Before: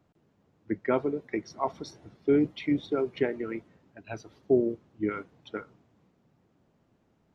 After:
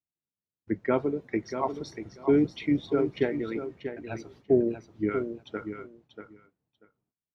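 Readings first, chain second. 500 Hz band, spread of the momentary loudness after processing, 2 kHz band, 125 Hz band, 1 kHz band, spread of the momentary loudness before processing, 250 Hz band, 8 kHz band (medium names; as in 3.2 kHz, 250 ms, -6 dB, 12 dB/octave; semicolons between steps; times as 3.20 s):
+1.5 dB, 16 LU, +0.5 dB, +3.5 dB, +0.5 dB, 17 LU, +2.0 dB, no reading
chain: gate -59 dBFS, range -37 dB; bass shelf 170 Hz +5 dB; on a send: feedback delay 638 ms, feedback 15%, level -9 dB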